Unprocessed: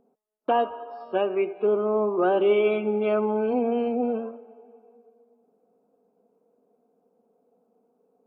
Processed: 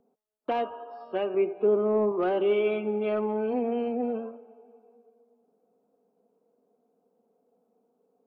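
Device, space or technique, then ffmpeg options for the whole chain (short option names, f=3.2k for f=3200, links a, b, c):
one-band saturation: -filter_complex "[0:a]acrossover=split=500|2100[a][b][c];[b]asoftclip=type=tanh:threshold=-22.5dB[d];[a][d][c]amix=inputs=3:normalize=0,asettb=1/sr,asplit=3[e][f][g];[e]atrim=end=1.344[h];[f]atrim=start=1.34:end=2.12,asetpts=PTS-STARTPTS,afade=t=in:d=0.004:c=qsin,afade=t=out:st=0.776:d=0.004:c=qsin,tiltshelf=f=1.2k:g=4.5[i];[g]atrim=start=2.116[j];[h][i]acrossfade=d=0.004:c1=hsin:c2=qsin[k];[k][j]acrossfade=d=0.004:c1=qsin:c2=hsin,volume=-3.5dB"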